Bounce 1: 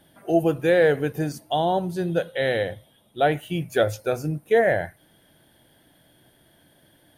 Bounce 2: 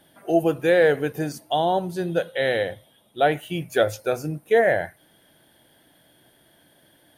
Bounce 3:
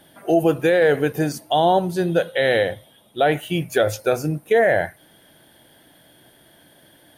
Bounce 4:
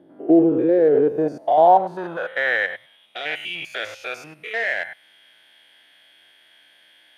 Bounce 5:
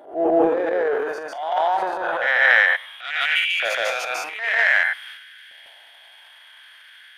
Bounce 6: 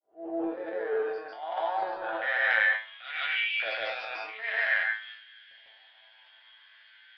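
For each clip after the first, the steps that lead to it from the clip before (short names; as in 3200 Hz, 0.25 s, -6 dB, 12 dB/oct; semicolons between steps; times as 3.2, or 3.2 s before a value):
low shelf 170 Hz -8 dB; gain +1.5 dB
limiter -13.5 dBFS, peak gain reduction 6.5 dB; gain +5.5 dB
stepped spectrum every 0.1 s; in parallel at -11 dB: wavefolder -25 dBFS; on the sum: band-pass sweep 330 Hz -> 2500 Hz, 0.78–3.06; gain +7.5 dB
LFO high-pass saw up 0.53 Hz 630–1800 Hz; reverse echo 0.148 s -3 dB; transient shaper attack -11 dB, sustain +8 dB; gain +3.5 dB
opening faded in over 1.06 s; resonator 110 Hz, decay 0.32 s, harmonics all, mix 90%; downsampling 11025 Hz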